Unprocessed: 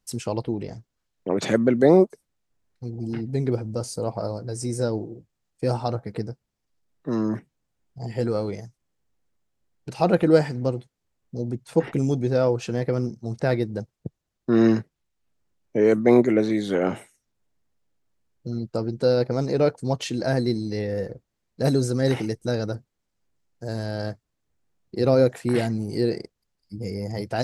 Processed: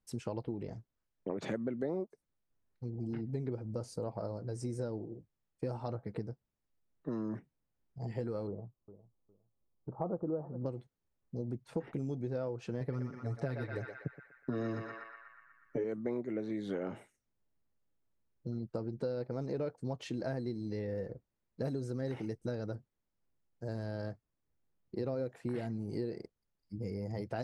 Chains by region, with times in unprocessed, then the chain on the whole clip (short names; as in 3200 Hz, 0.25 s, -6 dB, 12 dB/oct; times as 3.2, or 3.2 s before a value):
8.47–10.66 elliptic low-pass 1200 Hz, stop band 50 dB + feedback echo 0.408 s, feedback 20%, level -17.5 dB
12.8–15.84 high shelf 9200 Hz +9 dB + comb 7.1 ms, depth 86% + narrowing echo 0.121 s, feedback 69%, band-pass 1600 Hz, level -3 dB
whole clip: high shelf 3200 Hz -11.5 dB; notch 730 Hz, Q 23; compressor 6:1, threshold -27 dBFS; gain -6.5 dB